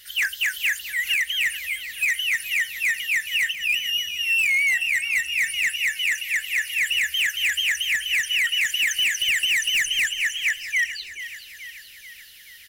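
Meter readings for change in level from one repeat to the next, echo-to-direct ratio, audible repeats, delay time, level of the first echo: -4.5 dB, -11.0 dB, 5, 431 ms, -13.0 dB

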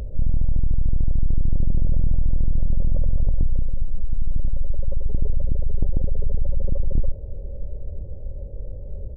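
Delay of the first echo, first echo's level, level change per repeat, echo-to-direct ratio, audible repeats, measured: 1032 ms, -19.5 dB, no regular repeats, -19.5 dB, 1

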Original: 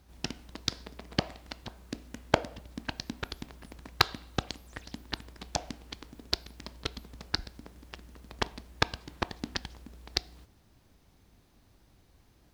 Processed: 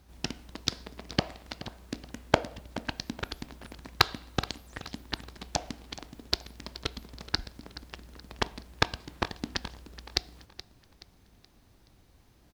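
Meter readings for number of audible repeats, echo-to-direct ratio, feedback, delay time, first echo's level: 3, -15.5 dB, 40%, 425 ms, -16.0 dB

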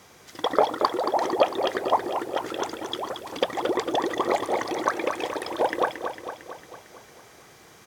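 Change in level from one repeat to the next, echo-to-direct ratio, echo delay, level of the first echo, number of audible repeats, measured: -4.5 dB, -6.0 dB, 226 ms, -8.0 dB, 6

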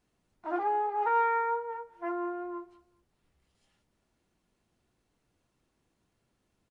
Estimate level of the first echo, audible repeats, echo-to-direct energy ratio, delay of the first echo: -21.0 dB, 2, -20.5 dB, 201 ms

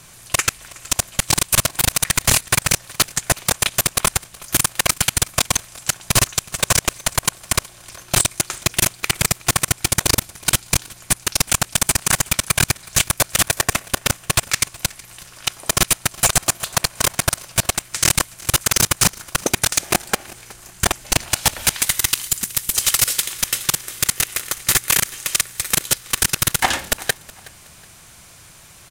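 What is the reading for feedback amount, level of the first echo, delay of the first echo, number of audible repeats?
33%, -22.0 dB, 370 ms, 2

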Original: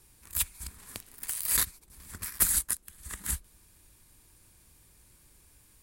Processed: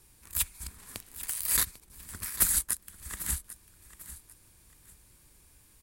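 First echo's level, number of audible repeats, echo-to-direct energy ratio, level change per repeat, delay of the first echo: -15.0 dB, 2, -14.5 dB, -10.0 dB, 796 ms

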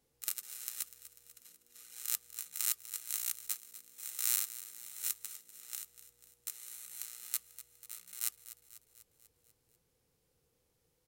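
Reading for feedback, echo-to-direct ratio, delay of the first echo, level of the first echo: 58%, -13.0 dB, 246 ms, -15.0 dB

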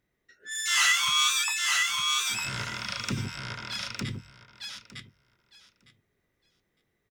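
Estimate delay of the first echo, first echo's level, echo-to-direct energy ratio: 907 ms, -3.0 dB, -3.0 dB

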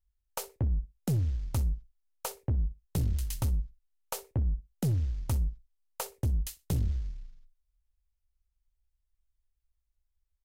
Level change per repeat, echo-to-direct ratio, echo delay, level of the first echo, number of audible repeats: -15.0 dB, -19.0 dB, 61 ms, -19.0 dB, 2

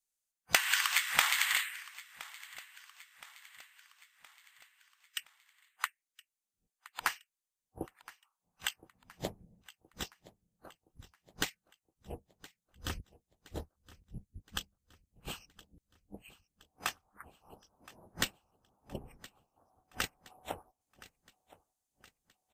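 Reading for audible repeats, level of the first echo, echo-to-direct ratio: 3, -20.0 dB, -18.5 dB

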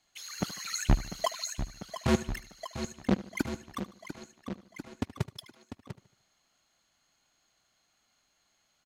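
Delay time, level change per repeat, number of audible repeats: 75 ms, -7.5 dB, 3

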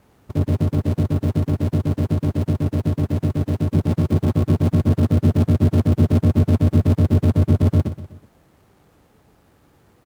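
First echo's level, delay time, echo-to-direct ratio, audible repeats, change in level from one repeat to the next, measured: -13.0 dB, 124 ms, -12.0 dB, 3, -7.0 dB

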